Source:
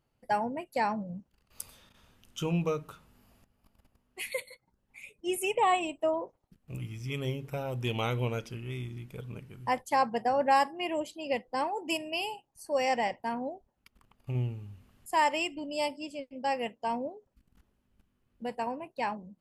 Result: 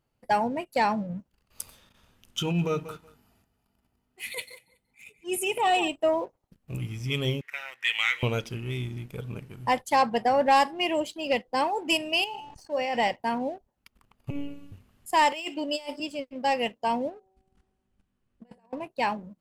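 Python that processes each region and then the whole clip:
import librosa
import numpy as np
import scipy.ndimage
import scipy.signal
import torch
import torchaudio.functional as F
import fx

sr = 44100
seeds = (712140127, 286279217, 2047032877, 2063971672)

y = fx.chain(x, sr, fx.echo_feedback(ms=186, feedback_pct=25, wet_db=-16.0),
    fx.transient(attack_db=-11, sustain_db=1),
    fx.notch_comb(f0_hz=550.0), at=(2.4, 5.88))
y = fx.chain(y, sr, fx.highpass_res(hz=1900.0, q=9.3),
    fx.high_shelf(hz=4600.0, db=-12.0), at=(7.41, 8.23))
y = fx.chain(y, sr, fx.air_absorb(metres=160.0),
    fx.comb_fb(f0_hz=290.0, decay_s=0.29, harmonics='all', damping=0.0, mix_pct=60),
    fx.sustainer(db_per_s=47.0), at=(12.24, 12.95))
y = fx.chain(y, sr, fx.robotise(hz=285.0),
    fx.notch(hz=830.0, q=7.1), at=(14.3, 14.72))
y = fx.chain(y, sr, fx.highpass(hz=330.0, slope=12),
    fx.over_compress(threshold_db=-37.0, ratio=-0.5), at=(15.32, 16.0))
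y = fx.chain(y, sr, fx.cheby1_lowpass(hz=9700.0, order=3),
    fx.over_compress(threshold_db=-42.0, ratio=-0.5),
    fx.comb_fb(f0_hz=190.0, decay_s=1.7, harmonics='all', damping=0.0, mix_pct=70), at=(17.1, 18.73))
y = fx.dynamic_eq(y, sr, hz=3500.0, q=1.7, threshold_db=-51.0, ratio=4.0, max_db=7)
y = fx.leveller(y, sr, passes=1)
y = y * 10.0 ** (1.5 / 20.0)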